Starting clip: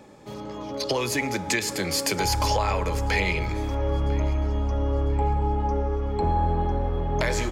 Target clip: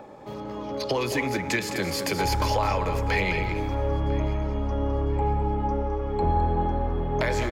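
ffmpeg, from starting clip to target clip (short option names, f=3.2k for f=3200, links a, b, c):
-filter_complex "[0:a]equalizer=f=8.1k:w=0.63:g=-8,acrossover=split=550|1000[a][b][c];[b]acompressor=mode=upward:threshold=-38dB:ratio=2.5[d];[a][d][c]amix=inputs=3:normalize=0,aecho=1:1:210:0.355"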